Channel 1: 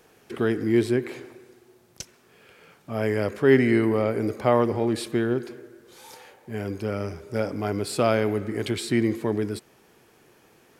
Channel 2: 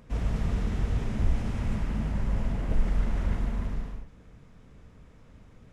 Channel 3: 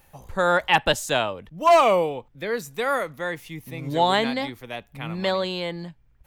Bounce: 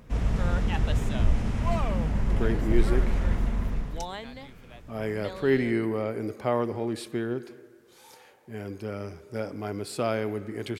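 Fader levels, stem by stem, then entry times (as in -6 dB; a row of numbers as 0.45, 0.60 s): -6.0, +2.5, -17.0 dB; 2.00, 0.00, 0.00 s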